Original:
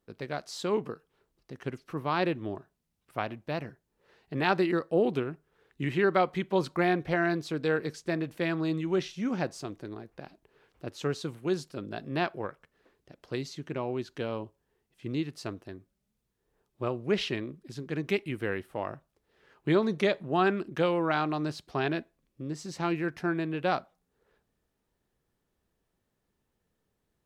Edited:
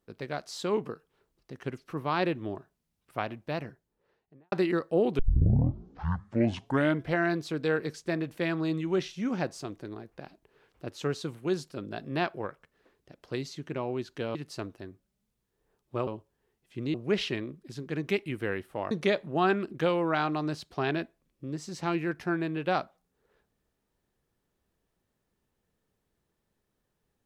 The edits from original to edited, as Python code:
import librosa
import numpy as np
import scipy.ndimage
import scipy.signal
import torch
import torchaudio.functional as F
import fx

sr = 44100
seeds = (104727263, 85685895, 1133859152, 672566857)

y = fx.studio_fade_out(x, sr, start_s=3.59, length_s=0.93)
y = fx.edit(y, sr, fx.tape_start(start_s=5.19, length_s=1.99),
    fx.move(start_s=14.35, length_s=0.87, to_s=16.94),
    fx.cut(start_s=18.91, length_s=0.97), tone=tone)